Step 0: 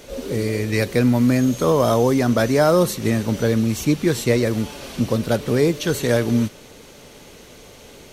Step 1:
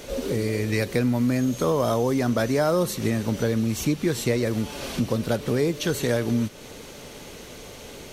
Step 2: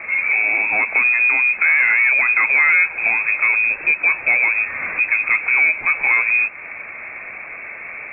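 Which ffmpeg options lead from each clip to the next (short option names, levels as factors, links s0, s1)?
-af "acompressor=threshold=0.0398:ratio=2,volume=1.33"
-filter_complex "[0:a]asplit=2[s0][s1];[s1]highpass=f=720:p=1,volume=7.94,asoftclip=type=tanh:threshold=0.335[s2];[s0][s2]amix=inputs=2:normalize=0,lowpass=f=1000:p=1,volume=0.501,lowpass=f=2300:t=q:w=0.5098,lowpass=f=2300:t=q:w=0.6013,lowpass=f=2300:t=q:w=0.9,lowpass=f=2300:t=q:w=2.563,afreqshift=-2700,volume=1.68"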